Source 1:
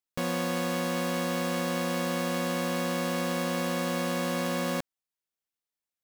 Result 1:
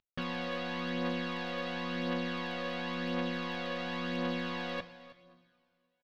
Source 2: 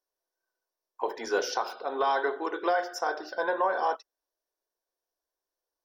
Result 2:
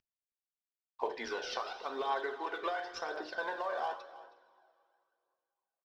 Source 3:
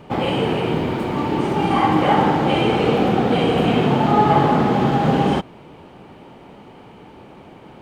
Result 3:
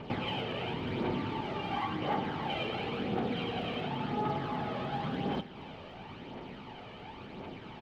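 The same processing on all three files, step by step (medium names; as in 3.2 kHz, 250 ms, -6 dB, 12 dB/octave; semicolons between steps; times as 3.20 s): CVSD coder 64 kbps; compression 8:1, threshold -28 dBFS; low-pass 4 kHz 24 dB/octave; two-slope reverb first 0.5 s, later 2.5 s, from -13 dB, DRR 9 dB; phaser 0.94 Hz, delay 1.8 ms, feedback 43%; treble shelf 2.4 kHz +10.5 dB; on a send: delay 318 ms -17.5 dB; on the sum: trim -6 dB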